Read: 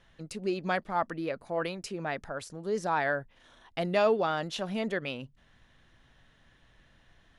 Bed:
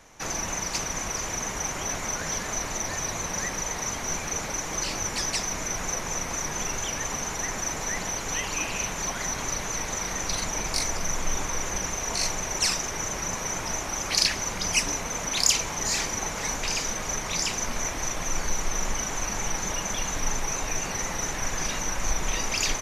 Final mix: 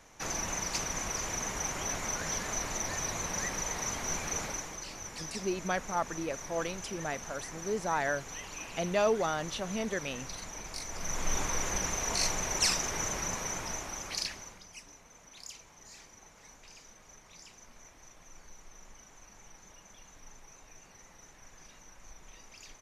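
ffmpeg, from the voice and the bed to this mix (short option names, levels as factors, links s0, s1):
-filter_complex "[0:a]adelay=5000,volume=0.75[s0];[1:a]volume=2,afade=t=out:st=4.42:d=0.36:silence=0.354813,afade=t=in:st=10.87:d=0.49:silence=0.298538,afade=t=out:st=13.02:d=1.64:silence=0.0749894[s1];[s0][s1]amix=inputs=2:normalize=0"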